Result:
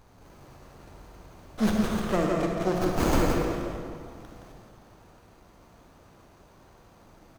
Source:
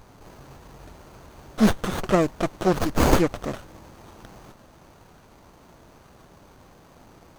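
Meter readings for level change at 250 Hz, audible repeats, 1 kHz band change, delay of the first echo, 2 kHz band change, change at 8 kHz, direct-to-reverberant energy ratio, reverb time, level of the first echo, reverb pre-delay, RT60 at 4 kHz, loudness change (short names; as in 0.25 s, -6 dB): -3.0 dB, 1, -4.0 dB, 0.169 s, -4.0 dB, -4.5 dB, -1.0 dB, 2.1 s, -5.0 dB, 37 ms, 1.4 s, -4.0 dB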